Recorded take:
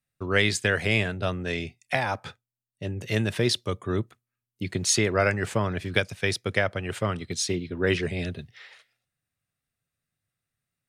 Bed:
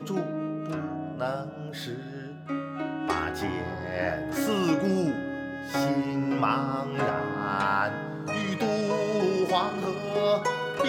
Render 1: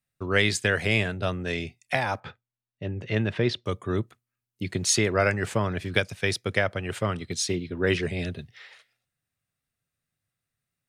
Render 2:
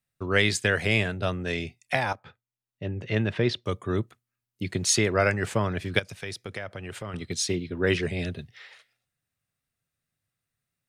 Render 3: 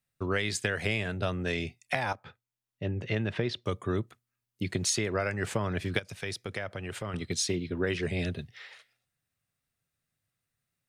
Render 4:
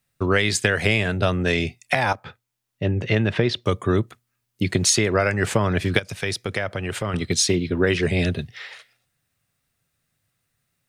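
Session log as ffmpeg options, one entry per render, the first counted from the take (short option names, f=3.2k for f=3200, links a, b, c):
-filter_complex "[0:a]asettb=1/sr,asplit=3[a][b][c];[a]atrim=end=2.204[d];[b]atrim=start=2.2:end=3.66,asetpts=PTS-STARTPTS,afade=t=in:d=0.004:c=qsin,afade=t=out:st=1.456:d=0.004:c=qsin,lowpass=3k[e];[c]atrim=start=3.656[f];[d][e]acrossfade=d=0.004:c1=hsin:c2=qsin[g];[g][f]acrossfade=d=0.004:c1=qsin:c2=hsin"
-filter_complex "[0:a]asettb=1/sr,asplit=3[a][b][c];[a]atrim=end=5.994[d];[b]atrim=start=5.99:end=7.14,asetpts=PTS-STARTPTS,afade=t=in:d=0.004:c=qsin,afade=t=out:st=1.146:d=0.004:c=qsin,acompressor=threshold=-36dB:ratio=2.5:attack=3.2:release=140:knee=1:detection=peak[e];[c]atrim=start=7.136[f];[d][e]acrossfade=d=0.004:c1=hsin:c2=qsin[g];[g][f]acrossfade=d=0.004:c1=qsin:c2=hsin,asplit=2[h][i];[h]atrim=end=2.13,asetpts=PTS-STARTPTS,afade=t=out:st=2.126:d=0.004:c=hsin:silence=0.223872[j];[i]atrim=start=2.13,asetpts=PTS-STARTPTS,afade=t=in:d=0.71:silence=0.223872[k];[j][k]concat=n=2:v=0:a=1"
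-af "acompressor=threshold=-25dB:ratio=12"
-af "volume=10dB,alimiter=limit=-3dB:level=0:latency=1"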